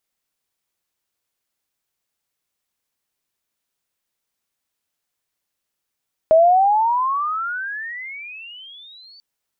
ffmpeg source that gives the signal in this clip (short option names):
-f lavfi -i "aevalsrc='pow(10,(-8-35*t/2.89)/20)*sin(2*PI*627*2.89/(34.5*log(2)/12)*(exp(34.5*log(2)/12*t/2.89)-1))':d=2.89:s=44100"